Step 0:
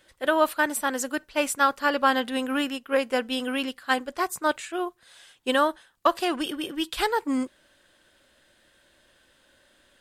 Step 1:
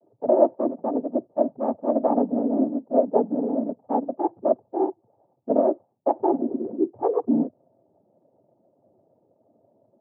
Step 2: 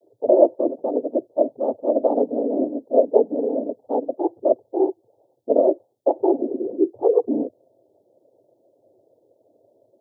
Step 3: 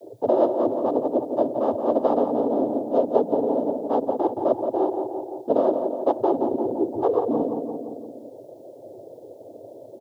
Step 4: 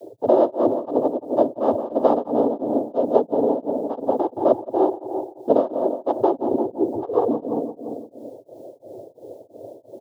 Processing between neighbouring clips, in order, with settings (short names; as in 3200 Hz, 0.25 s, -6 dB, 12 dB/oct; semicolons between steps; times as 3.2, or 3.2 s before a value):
steep low-pass 800 Hz 96 dB/oct; noise vocoder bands 16; gain +5.5 dB
EQ curve 120 Hz 0 dB, 190 Hz -10 dB, 330 Hz +6 dB, 490 Hz +10 dB, 1200 Hz -9 dB, 2300 Hz -11 dB, 3300 Hz +10 dB; gain -2.5 dB
on a send: feedback echo 0.172 s, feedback 45%, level -10.5 dB; on the sum: spectral compressor 2:1; gain -5 dB
beating tremolo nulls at 2.9 Hz; gain +4.5 dB